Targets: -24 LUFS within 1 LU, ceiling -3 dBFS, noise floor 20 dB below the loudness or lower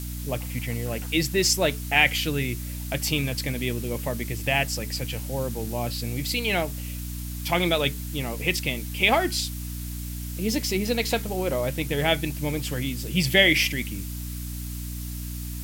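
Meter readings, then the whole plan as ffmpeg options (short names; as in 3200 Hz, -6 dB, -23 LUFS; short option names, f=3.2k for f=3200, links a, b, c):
hum 60 Hz; harmonics up to 300 Hz; hum level -31 dBFS; noise floor -33 dBFS; noise floor target -46 dBFS; loudness -25.5 LUFS; peak -3.5 dBFS; loudness target -24.0 LUFS
-> -af "bandreject=f=60:t=h:w=6,bandreject=f=120:t=h:w=6,bandreject=f=180:t=h:w=6,bandreject=f=240:t=h:w=6,bandreject=f=300:t=h:w=6"
-af "afftdn=nr=13:nf=-33"
-af "volume=1.5dB,alimiter=limit=-3dB:level=0:latency=1"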